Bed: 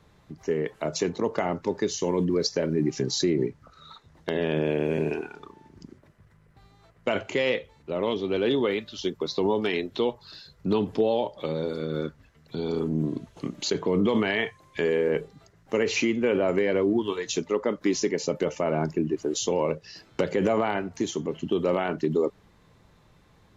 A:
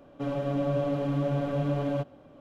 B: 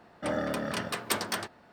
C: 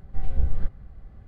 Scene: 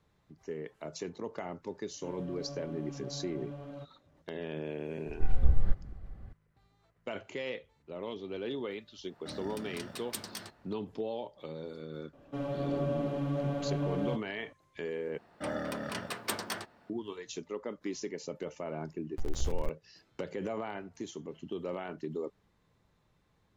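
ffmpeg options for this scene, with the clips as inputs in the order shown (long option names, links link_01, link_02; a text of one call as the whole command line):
ffmpeg -i bed.wav -i cue0.wav -i cue1.wav -i cue2.wav -filter_complex "[1:a]asplit=2[link_01][link_02];[3:a]asplit=2[link_03][link_04];[2:a]asplit=2[link_05][link_06];[0:a]volume=-13dB[link_07];[link_05]acrossover=split=270|3000[link_08][link_09][link_10];[link_09]acompressor=threshold=-40dB:ratio=6:attack=3.2:release=140:knee=2.83:detection=peak[link_11];[link_08][link_11][link_10]amix=inputs=3:normalize=0[link_12];[link_04]aeval=exprs='val(0)*gte(abs(val(0)),0.0596)':channel_layout=same[link_13];[link_07]asplit=2[link_14][link_15];[link_14]atrim=end=15.184[link_16];[link_06]atrim=end=1.72,asetpts=PTS-STARTPTS,volume=-5dB[link_17];[link_15]atrim=start=16.896[link_18];[link_01]atrim=end=2.4,asetpts=PTS-STARTPTS,volume=-16dB,afade=type=in:duration=0.004:curve=hsin,afade=type=out:start_time=2.396:duration=0.004:curve=hsin,adelay=1820[link_19];[link_03]atrim=end=1.27,asetpts=PTS-STARTPTS,volume=-1.5dB,afade=type=in:duration=0.004:curve=hsin,afade=type=out:start_time=1.266:duration=0.004:curve=hsin,adelay=5060[link_20];[link_12]atrim=end=1.72,asetpts=PTS-STARTPTS,volume=-7dB,afade=type=in:duration=0.1,afade=type=out:start_time=1.62:duration=0.1,adelay=9030[link_21];[link_02]atrim=end=2.4,asetpts=PTS-STARTPTS,volume=-5dB,afade=type=in:duration=0.004:curve=hsin,afade=type=out:start_time=2.396:duration=0.004:curve=hsin,adelay=12130[link_22];[link_13]atrim=end=1.27,asetpts=PTS-STARTPTS,volume=-11dB,afade=type=in:duration=0.004:curve=hsin,afade=type=out:start_time=1.266:duration=0.004:curve=hsin,adelay=19030[link_23];[link_16][link_17]acrossfade=duration=0.004:curve1=hsin:curve2=hsin[link_24];[link_24][link_18]acrossfade=duration=0.004:curve1=hsin:curve2=hsin[link_25];[link_25][link_19][link_20][link_21][link_22][link_23]amix=inputs=6:normalize=0" out.wav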